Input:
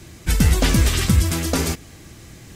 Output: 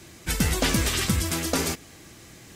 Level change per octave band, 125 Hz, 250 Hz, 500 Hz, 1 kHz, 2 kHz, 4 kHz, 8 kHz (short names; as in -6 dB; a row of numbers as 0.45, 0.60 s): -9.5, -5.5, -3.0, -2.5, -2.0, -2.0, -2.0 dB